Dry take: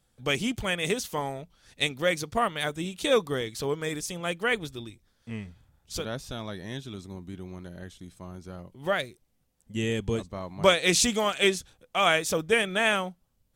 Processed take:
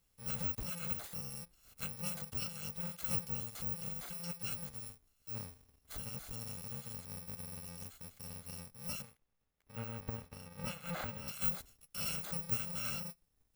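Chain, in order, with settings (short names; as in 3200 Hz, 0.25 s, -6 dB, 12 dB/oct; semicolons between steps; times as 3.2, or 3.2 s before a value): FFT order left unsorted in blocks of 128 samples; de-esser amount 60%; 9.02–11.28 tone controls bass -4 dB, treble -11 dB; gain -5.5 dB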